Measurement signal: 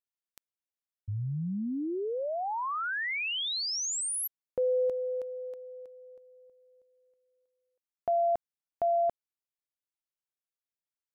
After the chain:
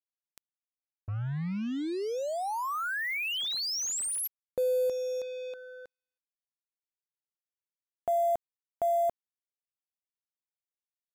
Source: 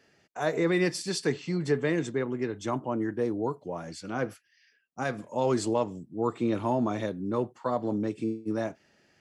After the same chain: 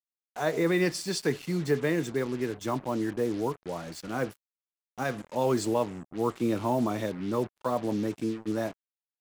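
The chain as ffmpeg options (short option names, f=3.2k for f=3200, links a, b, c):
-af "acrusher=bits=6:mix=0:aa=0.5"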